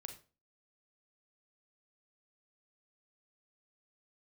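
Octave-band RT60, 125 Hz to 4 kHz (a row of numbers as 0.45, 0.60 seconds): 0.40, 0.40, 0.40, 0.35, 0.30, 0.30 seconds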